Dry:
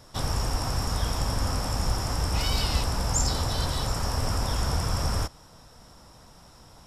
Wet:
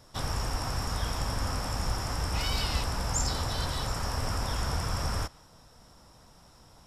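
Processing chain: dynamic bell 1.8 kHz, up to +4 dB, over -49 dBFS, Q 0.72; trim -4.5 dB

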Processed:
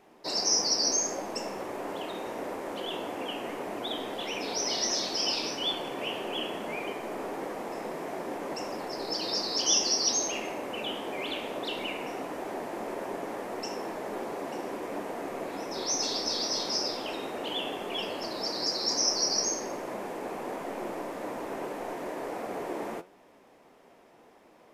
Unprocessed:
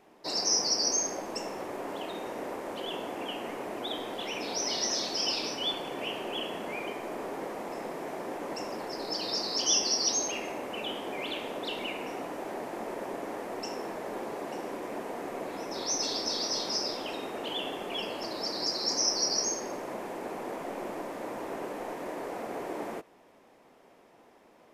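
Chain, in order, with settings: flange 1.6 Hz, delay 9.6 ms, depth 6.1 ms, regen +74%; trim +5.5 dB

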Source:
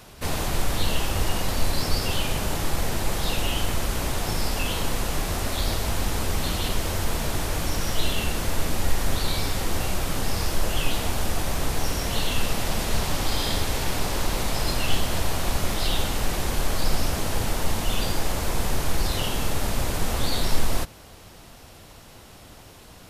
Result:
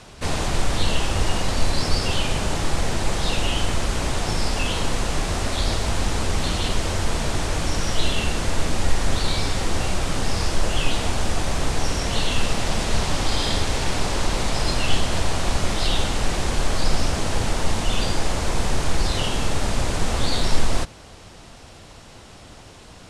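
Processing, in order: low-pass 9.1 kHz 24 dB/octave; trim +3 dB

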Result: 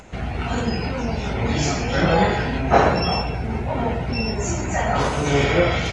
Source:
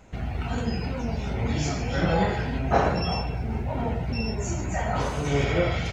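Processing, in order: bass shelf 220 Hz -5 dB; upward compressor, threshold -47 dBFS; trim +7 dB; AAC 32 kbps 24 kHz

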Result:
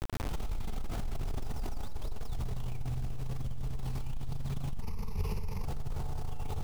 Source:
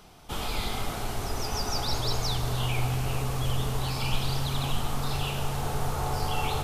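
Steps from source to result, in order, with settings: tracing distortion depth 0.026 ms; tilt EQ -4 dB/octave; hum notches 60/120/180/240/300/360/420/480 Hz; bit crusher 6-bit; peak limiter -34 dBFS, peak gain reduction 39 dB; 4.82–5.65 s: rippled EQ curve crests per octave 0.84, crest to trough 13 dB; trim +5.5 dB

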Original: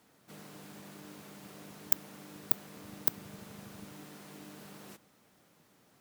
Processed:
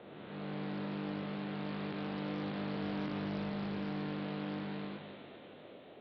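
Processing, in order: spectral blur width 493 ms; steep low-pass 3.9 kHz 96 dB/octave; feedback comb 50 Hz, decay 0.32 s, harmonics all, mix 80%; band noise 230–670 Hz -69 dBFS; on a send: feedback echo behind a high-pass 244 ms, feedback 73%, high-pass 1.9 kHz, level -8 dB; on the sum: loudspeaker Doppler distortion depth 0.35 ms; trim +14.5 dB

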